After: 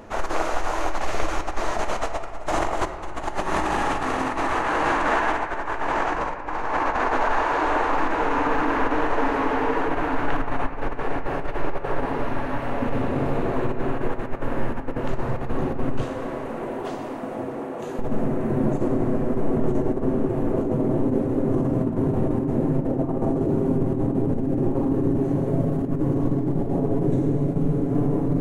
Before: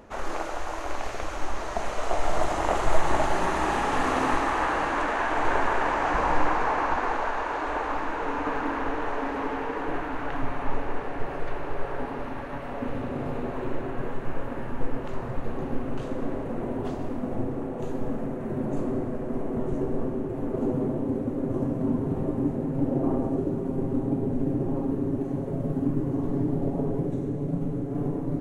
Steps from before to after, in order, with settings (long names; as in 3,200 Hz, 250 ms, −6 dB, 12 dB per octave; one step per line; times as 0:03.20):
0:16.04–0:17.99: high-pass filter 660 Hz 6 dB per octave
compressor whose output falls as the input rises −27 dBFS, ratio −0.5
on a send: convolution reverb RT60 2.3 s, pre-delay 3 ms, DRR 7 dB
on the sum: level +4 dB